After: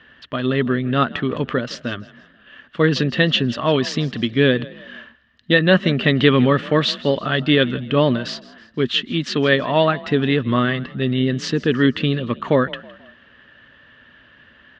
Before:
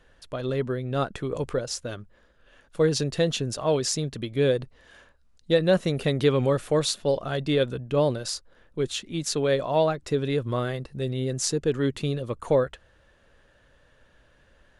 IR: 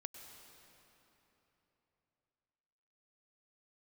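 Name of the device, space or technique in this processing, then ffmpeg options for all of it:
frequency-shifting delay pedal into a guitar cabinet: -filter_complex "[0:a]asplit=4[s0][s1][s2][s3];[s1]adelay=162,afreqshift=34,volume=0.1[s4];[s2]adelay=324,afreqshift=68,volume=0.0432[s5];[s3]adelay=486,afreqshift=102,volume=0.0184[s6];[s0][s4][s5][s6]amix=inputs=4:normalize=0,highpass=92,equalizer=f=240:t=q:w=4:g=9,equalizer=f=500:t=q:w=4:g=-6,equalizer=f=790:t=q:w=4:g=-4,equalizer=f=1200:t=q:w=4:g=5,equalizer=f=1800:t=q:w=4:g=10,equalizer=f=3000:t=q:w=4:g=10,lowpass=f=4300:w=0.5412,lowpass=f=4300:w=1.3066,volume=2.24"

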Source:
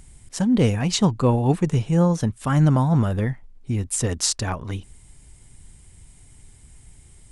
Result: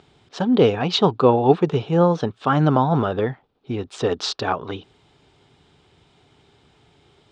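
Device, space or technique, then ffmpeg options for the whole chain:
kitchen radio: -af "highpass=200,equalizer=f=210:t=q:w=4:g=-6,equalizer=f=420:t=q:w=4:g=7,equalizer=f=770:t=q:w=4:g=5,equalizer=f=1300:t=q:w=4:g=5,equalizer=f=2000:t=q:w=4:g=-7,equalizer=f=3600:t=q:w=4:g=5,lowpass=f=4200:w=0.5412,lowpass=f=4200:w=1.3066,volume=1.58"

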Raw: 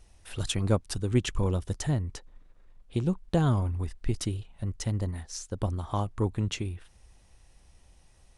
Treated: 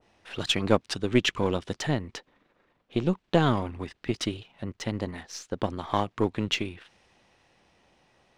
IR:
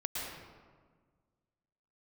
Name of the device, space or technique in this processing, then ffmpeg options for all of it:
crystal radio: -af "highpass=210,lowpass=3300,aeval=exprs='if(lt(val(0),0),0.708*val(0),val(0))':c=same,adynamicequalizer=threshold=0.00282:dfrequency=1800:dqfactor=0.7:tfrequency=1800:tqfactor=0.7:attack=5:release=100:ratio=0.375:range=4:mode=boostabove:tftype=highshelf,volume=2.11"

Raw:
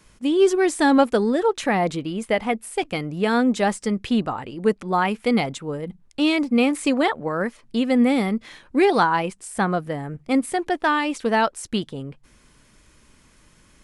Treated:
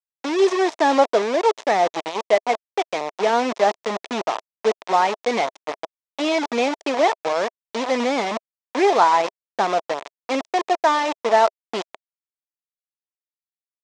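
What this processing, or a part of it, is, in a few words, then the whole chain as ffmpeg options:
hand-held game console: -af "acrusher=bits=3:mix=0:aa=0.000001,highpass=410,equalizer=f=410:t=q:w=4:g=3,equalizer=f=650:t=q:w=4:g=8,equalizer=f=960:t=q:w=4:g=5,equalizer=f=1500:t=q:w=4:g=-5,equalizer=f=2900:t=q:w=4:g=-4,equalizer=f=4500:t=q:w=4:g=-5,lowpass=f=5800:w=0.5412,lowpass=f=5800:w=1.3066"

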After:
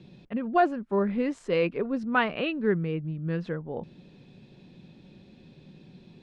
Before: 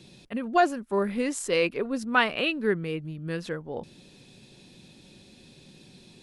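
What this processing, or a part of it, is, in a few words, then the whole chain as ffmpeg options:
phone in a pocket: -af "lowpass=3800,equalizer=f=170:t=o:w=0.6:g=5,highshelf=f=2100:g=-8"

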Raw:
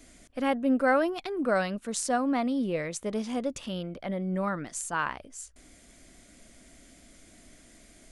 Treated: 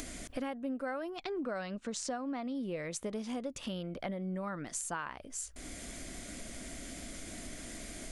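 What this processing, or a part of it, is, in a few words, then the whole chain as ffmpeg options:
upward and downward compression: -filter_complex "[0:a]asettb=1/sr,asplit=3[s0][s1][s2];[s0]atrim=end=1.164[s3];[s1]atrim=start=1.16:end=2.55,asetpts=PTS-STARTPTS,afade=t=in:d=0.004:c=qsin,afade=t=out:st=1.386:d=0.004:c=qsin,lowpass=f=7400:w=0.5412,lowpass=f=7400:w=1.3066[s4];[s2]atrim=start=2.546[s5];[s3][s4]acrossfade=d=0.004:c1=hsin:c2=qsin[s6];[s6][s5]acrossfade=d=0.004:c1=qsin:c2=hsin,acompressor=mode=upward:threshold=0.01:ratio=2.5,acompressor=threshold=0.0112:ratio=8,volume=1.58"

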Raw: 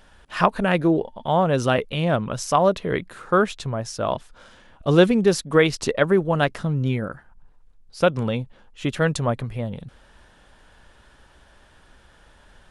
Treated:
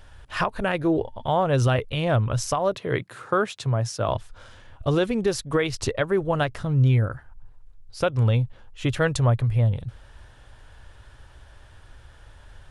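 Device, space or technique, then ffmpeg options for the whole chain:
car stereo with a boomy subwoofer: -filter_complex "[0:a]lowshelf=f=140:t=q:w=3:g=6.5,alimiter=limit=0.251:level=0:latency=1:release=284,asettb=1/sr,asplit=3[s0][s1][s2];[s0]atrim=end=2.754[s3];[s1]atrim=start=2.75:end=4.09,asetpts=PTS-STARTPTS,afade=t=in:d=0.004:c=qsin,afade=t=out:st=1.336:d=0.004:c=qsin,highpass=f=120:w=0.5412,highpass=f=120:w=1.3066[s4];[s2]atrim=start=4.086[s5];[s3][s4]acrossfade=d=0.004:c1=hsin:c2=qsin[s6];[s6][s5]acrossfade=d=0.004:c1=qsin:c2=hsin"

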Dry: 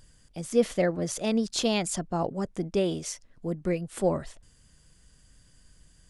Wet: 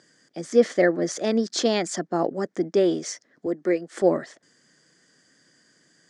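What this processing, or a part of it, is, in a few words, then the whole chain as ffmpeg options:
television speaker: -filter_complex "[0:a]highpass=f=200:w=0.5412,highpass=f=200:w=1.3066,equalizer=f=200:t=q:w=4:g=-4,equalizer=f=340:t=q:w=4:g=4,equalizer=f=950:t=q:w=4:g=-6,equalizer=f=1800:t=q:w=4:g=7,equalizer=f=2700:t=q:w=4:g=-10,equalizer=f=3800:t=q:w=4:g=-4,lowpass=f=6800:w=0.5412,lowpass=f=6800:w=1.3066,asettb=1/sr,asplit=3[s0][s1][s2];[s0]atrim=end=3.464[s3];[s1]atrim=start=3.46:end=4.02,asetpts=PTS-STARTPTS,afade=t=in:d=0.004:c=qsin,afade=t=out:st=0.556:d=0.004:c=qsin,highpass=250[s4];[s2]atrim=start=4.016[s5];[s3][s4]acrossfade=d=0.004:c1=hsin:c2=qsin[s6];[s6][s5]acrossfade=d=0.004:c1=qsin:c2=hsin,volume=1.88"

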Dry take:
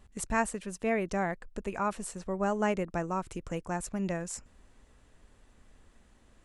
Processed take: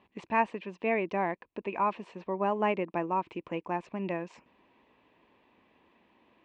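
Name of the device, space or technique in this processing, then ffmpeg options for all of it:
kitchen radio: -af "highpass=210,equalizer=f=330:t=q:w=4:g=5,equalizer=f=980:t=q:w=4:g=9,equalizer=f=1400:t=q:w=4:g=-9,equalizer=f=2500:t=q:w=4:g=7,lowpass=f=3500:w=0.5412,lowpass=f=3500:w=1.3066"

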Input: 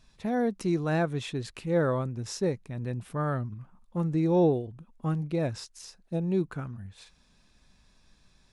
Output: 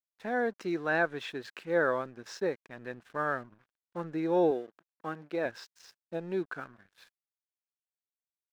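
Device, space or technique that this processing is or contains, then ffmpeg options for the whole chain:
pocket radio on a weak battery: -filter_complex "[0:a]highpass=370,lowpass=4300,aeval=exprs='sgn(val(0))*max(abs(val(0))-0.00126,0)':c=same,equalizer=f=1600:t=o:w=0.34:g=9.5,asettb=1/sr,asplit=3[s0][s1][s2];[s0]atrim=end=4.514[s3];[s1]atrim=start=4.51:end=5.46,asetpts=PTS-STARTPTS,afade=t=in:d=0.004:c=qsin,afade=t=out:st=0.946:d=0.004:c=qsin,highpass=180[s4];[s2]atrim=start=5.456[s5];[s3][s4]acrossfade=d=0.004:c1=hsin:c2=qsin[s6];[s6][s5]acrossfade=d=0.004:c1=qsin:c2=hsin"

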